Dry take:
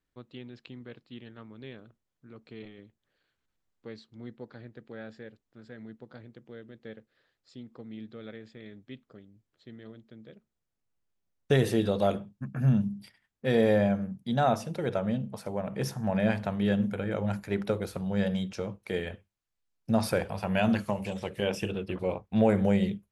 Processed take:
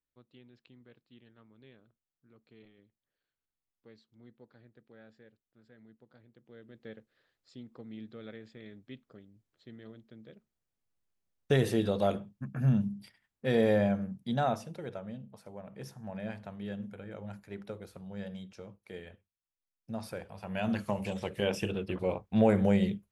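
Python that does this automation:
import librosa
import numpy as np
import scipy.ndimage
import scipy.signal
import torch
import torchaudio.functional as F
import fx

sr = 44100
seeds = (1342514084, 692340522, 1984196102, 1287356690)

y = fx.gain(x, sr, db=fx.line((6.26, -13.0), (6.81, -2.5), (14.3, -2.5), (15.06, -13.0), (20.3, -13.0), (20.98, -1.0)))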